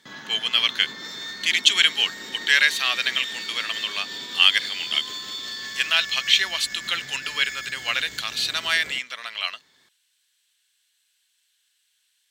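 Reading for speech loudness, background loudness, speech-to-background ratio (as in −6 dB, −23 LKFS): −22.0 LKFS, −32.5 LKFS, 10.5 dB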